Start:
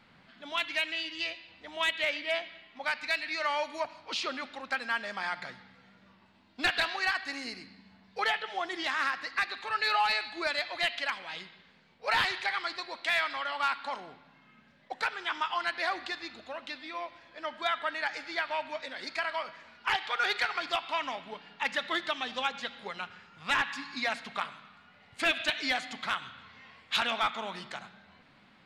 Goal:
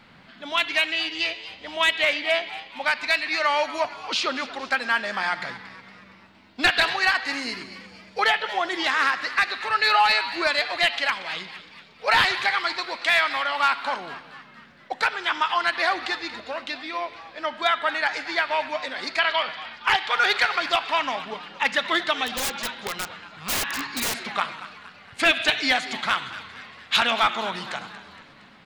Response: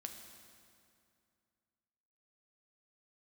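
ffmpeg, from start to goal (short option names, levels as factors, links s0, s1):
-filter_complex "[0:a]asettb=1/sr,asplit=3[s0][s1][s2];[s0]atrim=end=19.194[s3];[s1]atrim=start=19.19:end=19.73,asetpts=PTS-STARTPTS,afade=t=in:d=0.004:c=qsin,afade=t=out:st=0.536:d=0.004:c=qsin,lowpass=f=3500:t=q:w=3.4[s4];[s2]atrim=start=19.726[s5];[s3][s4]acrossfade=d=0.004:c1=hsin:c2=qsin[s6];[s6][s5]acrossfade=d=0.004:c1=qsin:c2=hsin,asplit=6[s7][s8][s9][s10][s11][s12];[s8]adelay=232,afreqshift=120,volume=0.168[s13];[s9]adelay=464,afreqshift=240,volume=0.0891[s14];[s10]adelay=696,afreqshift=360,volume=0.0473[s15];[s11]adelay=928,afreqshift=480,volume=0.0251[s16];[s12]adelay=1160,afreqshift=600,volume=0.0132[s17];[s7][s13][s14][s15][s16][s17]amix=inputs=6:normalize=0,asettb=1/sr,asplit=3[s18][s19][s20];[s18]atrim=end=22.264[s21];[s19]atrim=start=22.26:end=24.33,asetpts=PTS-STARTPTS,afade=t=in:d=0.004:c=qsin,afade=t=out:st=2.066:d=0.004:c=qsin,aeval=exprs='(mod(26.6*val(0)+1,2)-1)/26.6':c=same[s22];[s20]atrim=start=24.326[s23];[s21][s22]acrossfade=d=0.004:c1=hsin:c2=qsin[s24];[s24][s23]acrossfade=d=0.004:c1=qsin:c2=hsin,volume=2.66"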